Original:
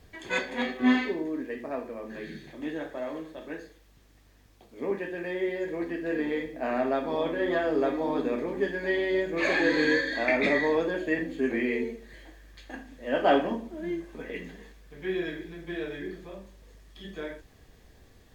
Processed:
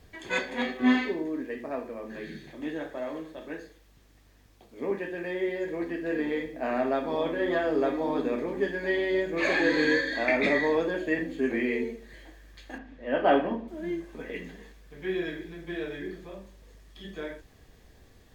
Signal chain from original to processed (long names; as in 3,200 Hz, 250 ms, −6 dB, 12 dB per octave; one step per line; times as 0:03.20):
0:12.78–0:13.68: low-pass filter 3,000 Hz 12 dB per octave